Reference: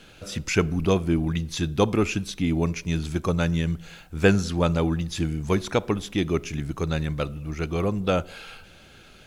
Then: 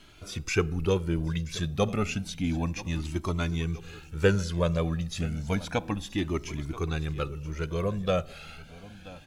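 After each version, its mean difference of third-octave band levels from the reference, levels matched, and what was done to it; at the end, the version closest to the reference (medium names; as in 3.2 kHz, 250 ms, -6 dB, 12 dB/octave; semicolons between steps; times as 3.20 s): 3.0 dB: feedback delay 979 ms, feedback 40%, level -17 dB; Shepard-style flanger rising 0.31 Hz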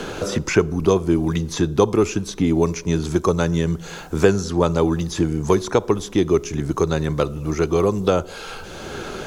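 4.0 dB: fifteen-band graphic EQ 400 Hz +9 dB, 1 kHz +7 dB, 2.5 kHz -5 dB, 6.3 kHz +6 dB; three bands compressed up and down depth 70%; trim +1 dB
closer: first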